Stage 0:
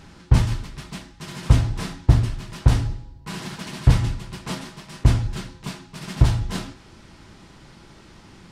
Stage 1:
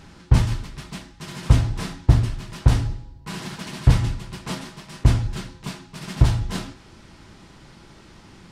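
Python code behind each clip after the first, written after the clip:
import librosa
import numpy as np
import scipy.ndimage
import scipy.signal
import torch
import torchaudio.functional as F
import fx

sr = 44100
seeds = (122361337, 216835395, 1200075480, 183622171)

y = x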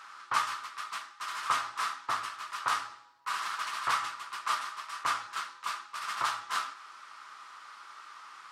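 y = fx.highpass_res(x, sr, hz=1200.0, q=6.9)
y = y * 10.0 ** (-3.5 / 20.0)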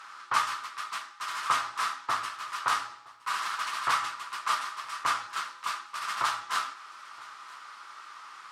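y = fx.cheby_harmonics(x, sr, harmonics=(4,), levels_db=(-41,), full_scale_db=-14.5)
y = y + 10.0 ** (-22.5 / 20.0) * np.pad(y, (int(967 * sr / 1000.0), 0))[:len(y)]
y = y * 10.0 ** (2.5 / 20.0)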